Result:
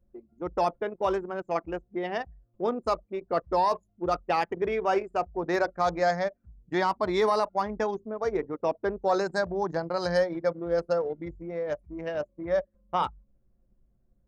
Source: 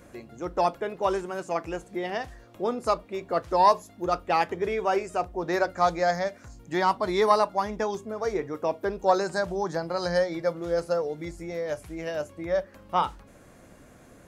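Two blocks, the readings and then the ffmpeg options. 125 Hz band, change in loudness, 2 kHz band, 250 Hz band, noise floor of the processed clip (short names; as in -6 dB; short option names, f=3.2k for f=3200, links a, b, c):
-1.5 dB, -1.5 dB, -1.0 dB, -0.5 dB, -70 dBFS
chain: -af "anlmdn=10,alimiter=limit=-15.5dB:level=0:latency=1:release=21"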